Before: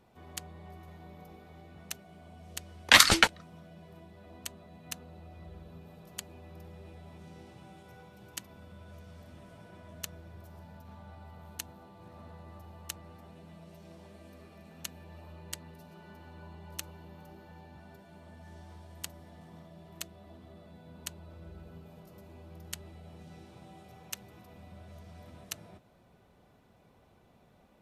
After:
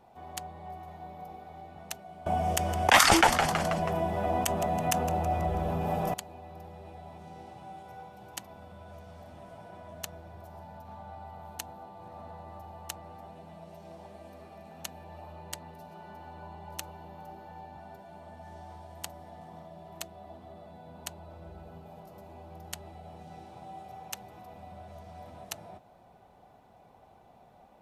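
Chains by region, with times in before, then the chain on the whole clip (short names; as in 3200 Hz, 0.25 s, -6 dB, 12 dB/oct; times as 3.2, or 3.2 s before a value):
2.26–6.14 bell 4100 Hz -12 dB 0.23 oct + frequency-shifting echo 0.162 s, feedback 50%, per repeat -87 Hz, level -21.5 dB + fast leveller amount 50%
whole clip: bell 770 Hz +13 dB 0.75 oct; maximiser +5.5 dB; gain -5.5 dB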